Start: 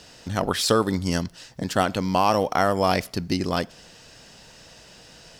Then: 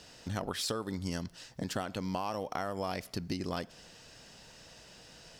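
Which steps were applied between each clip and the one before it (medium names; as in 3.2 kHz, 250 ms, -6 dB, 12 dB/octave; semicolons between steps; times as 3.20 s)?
compression 10:1, threshold -25 dBFS, peak gain reduction 11 dB; trim -6 dB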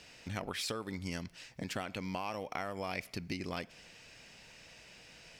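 peaking EQ 2.3 kHz +12.5 dB 0.49 oct; trim -4 dB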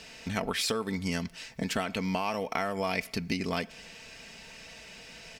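comb 4.5 ms, depth 45%; trim +7 dB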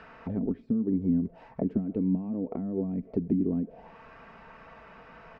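touch-sensitive low-pass 220–1500 Hz down, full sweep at -26 dBFS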